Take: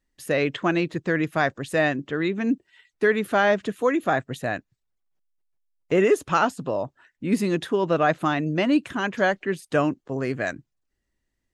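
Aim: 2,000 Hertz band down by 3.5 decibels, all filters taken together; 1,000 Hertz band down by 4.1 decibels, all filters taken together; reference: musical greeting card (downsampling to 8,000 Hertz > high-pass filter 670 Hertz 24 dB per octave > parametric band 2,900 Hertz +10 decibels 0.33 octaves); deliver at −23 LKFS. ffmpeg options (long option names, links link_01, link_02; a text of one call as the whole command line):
ffmpeg -i in.wav -af "equalizer=frequency=1000:width_type=o:gain=-3.5,equalizer=frequency=2000:width_type=o:gain=-5,aresample=8000,aresample=44100,highpass=frequency=670:width=0.5412,highpass=frequency=670:width=1.3066,equalizer=frequency=2900:width_type=o:width=0.33:gain=10,volume=7.5dB" out.wav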